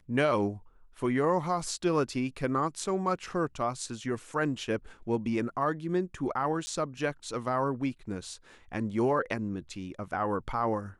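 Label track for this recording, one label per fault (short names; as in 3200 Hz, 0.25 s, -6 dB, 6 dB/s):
6.660000	6.670000	gap 10 ms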